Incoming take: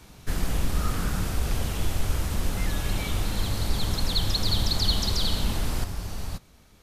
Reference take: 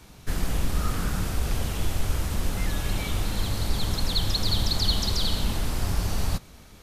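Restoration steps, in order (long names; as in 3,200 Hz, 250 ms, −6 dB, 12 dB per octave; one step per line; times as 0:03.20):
level 0 dB, from 0:05.84 +7 dB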